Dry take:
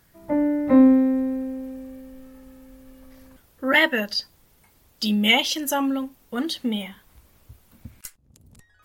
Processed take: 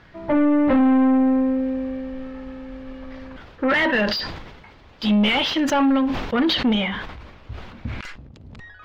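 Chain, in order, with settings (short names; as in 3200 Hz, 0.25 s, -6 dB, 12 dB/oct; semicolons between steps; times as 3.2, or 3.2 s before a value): EQ curve 160 Hz 0 dB, 6600 Hz +11 dB, 11000 Hz -7 dB; in parallel at -0.5 dB: limiter -17 dBFS, peak gain reduction 19.5 dB; on the sum: soft clip -18 dBFS, distortion -6 dB; air absorption 390 m; sustainer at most 46 dB/s; gain +4.5 dB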